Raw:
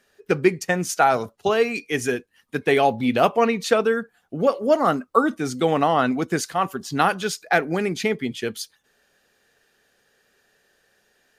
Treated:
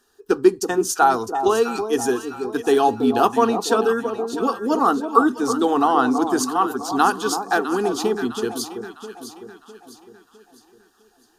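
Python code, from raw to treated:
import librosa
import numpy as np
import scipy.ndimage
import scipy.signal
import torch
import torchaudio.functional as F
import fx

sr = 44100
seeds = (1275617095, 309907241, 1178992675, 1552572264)

y = fx.fixed_phaser(x, sr, hz=580.0, stages=6)
y = fx.echo_alternate(y, sr, ms=328, hz=1000.0, feedback_pct=65, wet_db=-7)
y = y * 10.0 ** (4.5 / 20.0)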